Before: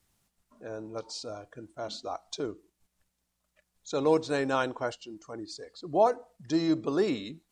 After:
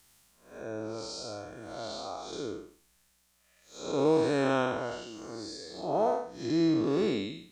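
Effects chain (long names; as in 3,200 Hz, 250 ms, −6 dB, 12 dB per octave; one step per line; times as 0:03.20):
spectrum smeared in time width 224 ms
one half of a high-frequency compander encoder only
level +4 dB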